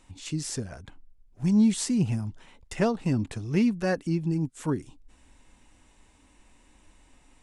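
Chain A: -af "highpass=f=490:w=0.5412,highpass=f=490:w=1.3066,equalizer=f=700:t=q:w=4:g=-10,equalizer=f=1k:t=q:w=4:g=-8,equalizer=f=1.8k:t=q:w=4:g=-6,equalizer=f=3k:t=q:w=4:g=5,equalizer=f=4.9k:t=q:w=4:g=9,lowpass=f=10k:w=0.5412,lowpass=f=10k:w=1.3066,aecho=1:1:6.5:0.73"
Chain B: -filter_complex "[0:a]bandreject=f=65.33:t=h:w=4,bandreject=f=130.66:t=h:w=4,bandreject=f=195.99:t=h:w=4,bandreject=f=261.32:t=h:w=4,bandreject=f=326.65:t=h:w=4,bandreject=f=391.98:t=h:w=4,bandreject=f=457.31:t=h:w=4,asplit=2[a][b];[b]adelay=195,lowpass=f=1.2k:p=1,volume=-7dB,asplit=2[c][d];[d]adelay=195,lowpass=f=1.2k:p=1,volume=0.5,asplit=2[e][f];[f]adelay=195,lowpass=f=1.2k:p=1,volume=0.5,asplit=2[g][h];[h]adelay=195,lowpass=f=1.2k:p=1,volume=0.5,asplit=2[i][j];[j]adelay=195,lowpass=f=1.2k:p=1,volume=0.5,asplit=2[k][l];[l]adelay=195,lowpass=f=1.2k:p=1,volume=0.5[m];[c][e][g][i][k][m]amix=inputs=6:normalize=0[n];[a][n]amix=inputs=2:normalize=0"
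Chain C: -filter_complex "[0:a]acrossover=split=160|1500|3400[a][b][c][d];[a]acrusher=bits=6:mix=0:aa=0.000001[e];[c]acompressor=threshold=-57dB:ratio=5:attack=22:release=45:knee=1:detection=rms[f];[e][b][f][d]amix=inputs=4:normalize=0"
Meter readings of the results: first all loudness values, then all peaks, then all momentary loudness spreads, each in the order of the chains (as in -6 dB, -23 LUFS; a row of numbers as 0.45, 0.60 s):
-34.0, -27.0, -27.5 LUFS; -13.5, -11.5, -12.0 dBFS; 17, 17, 13 LU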